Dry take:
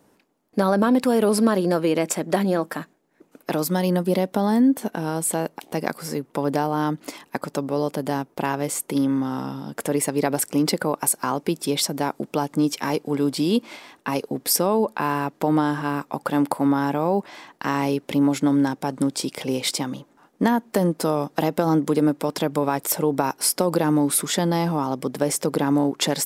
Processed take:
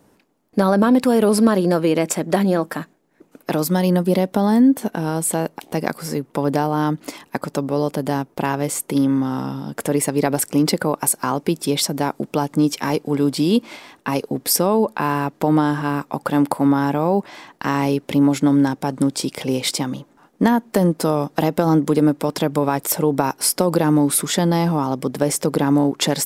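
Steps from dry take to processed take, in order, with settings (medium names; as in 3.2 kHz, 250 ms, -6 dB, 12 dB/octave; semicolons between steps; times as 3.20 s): bass shelf 130 Hz +7 dB; trim +2.5 dB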